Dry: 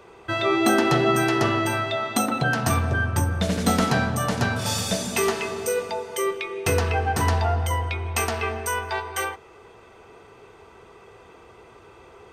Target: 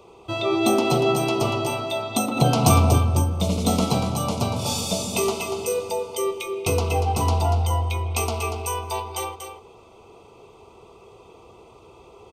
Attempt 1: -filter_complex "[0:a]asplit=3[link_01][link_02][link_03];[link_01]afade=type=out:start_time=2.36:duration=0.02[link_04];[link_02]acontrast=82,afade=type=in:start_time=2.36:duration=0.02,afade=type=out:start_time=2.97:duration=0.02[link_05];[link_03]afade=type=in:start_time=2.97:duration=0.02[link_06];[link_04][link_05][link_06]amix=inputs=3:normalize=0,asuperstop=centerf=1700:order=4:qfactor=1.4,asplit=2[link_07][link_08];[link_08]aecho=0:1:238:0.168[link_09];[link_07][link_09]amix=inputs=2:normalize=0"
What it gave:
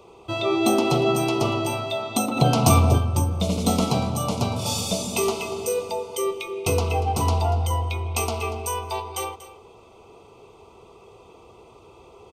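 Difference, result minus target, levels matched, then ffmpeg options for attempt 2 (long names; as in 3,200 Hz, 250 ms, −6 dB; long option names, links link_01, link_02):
echo-to-direct −7.5 dB
-filter_complex "[0:a]asplit=3[link_01][link_02][link_03];[link_01]afade=type=out:start_time=2.36:duration=0.02[link_04];[link_02]acontrast=82,afade=type=in:start_time=2.36:duration=0.02,afade=type=out:start_time=2.97:duration=0.02[link_05];[link_03]afade=type=in:start_time=2.97:duration=0.02[link_06];[link_04][link_05][link_06]amix=inputs=3:normalize=0,asuperstop=centerf=1700:order=4:qfactor=1.4,asplit=2[link_07][link_08];[link_08]aecho=0:1:238:0.398[link_09];[link_07][link_09]amix=inputs=2:normalize=0"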